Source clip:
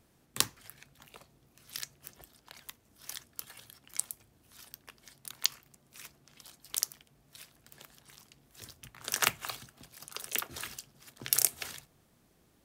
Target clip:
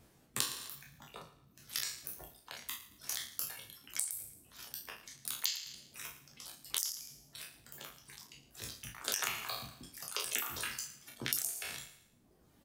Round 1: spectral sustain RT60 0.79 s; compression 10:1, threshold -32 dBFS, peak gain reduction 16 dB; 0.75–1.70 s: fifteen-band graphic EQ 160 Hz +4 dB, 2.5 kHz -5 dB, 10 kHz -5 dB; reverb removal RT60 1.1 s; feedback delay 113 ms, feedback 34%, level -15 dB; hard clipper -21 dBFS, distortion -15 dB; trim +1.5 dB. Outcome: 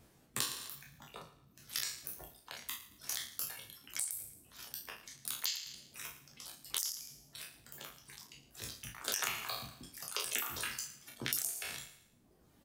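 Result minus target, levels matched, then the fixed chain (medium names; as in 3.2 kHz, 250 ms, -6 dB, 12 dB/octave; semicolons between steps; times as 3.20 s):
hard clipper: distortion +15 dB
spectral sustain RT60 0.79 s; compression 10:1, threshold -32 dBFS, peak gain reduction 16 dB; 0.75–1.70 s: fifteen-band graphic EQ 160 Hz +4 dB, 2.5 kHz -5 dB, 10 kHz -5 dB; reverb removal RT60 1.1 s; feedback delay 113 ms, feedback 34%, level -15 dB; hard clipper -12.5 dBFS, distortion -30 dB; trim +1.5 dB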